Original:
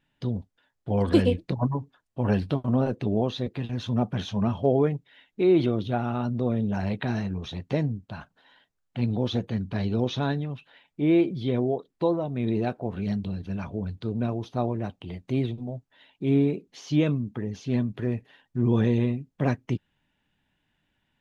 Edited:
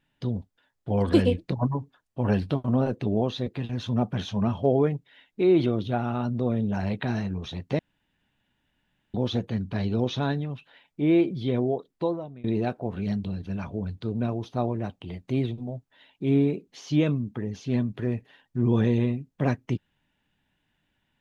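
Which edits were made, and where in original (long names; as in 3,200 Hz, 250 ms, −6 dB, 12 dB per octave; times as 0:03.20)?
0:07.79–0:09.14: fill with room tone
0:11.92–0:12.44: fade out, to −23.5 dB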